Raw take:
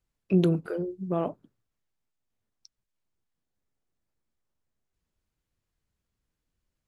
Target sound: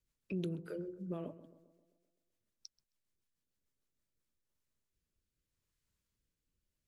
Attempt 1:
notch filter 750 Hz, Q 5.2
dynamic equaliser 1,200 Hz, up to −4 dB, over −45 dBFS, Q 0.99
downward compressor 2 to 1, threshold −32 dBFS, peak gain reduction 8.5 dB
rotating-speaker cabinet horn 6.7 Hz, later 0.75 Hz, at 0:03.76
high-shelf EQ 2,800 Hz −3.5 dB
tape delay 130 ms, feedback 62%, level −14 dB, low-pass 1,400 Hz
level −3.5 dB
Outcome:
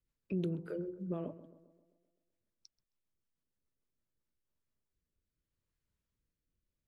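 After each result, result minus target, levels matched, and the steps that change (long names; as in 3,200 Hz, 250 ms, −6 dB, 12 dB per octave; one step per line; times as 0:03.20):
4,000 Hz band −7.0 dB; downward compressor: peak gain reduction −3 dB
change: high-shelf EQ 2,800 Hz +6.5 dB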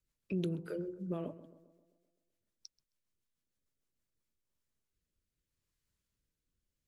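downward compressor: peak gain reduction −3 dB
change: downward compressor 2 to 1, threshold −38 dBFS, peak gain reduction 11.5 dB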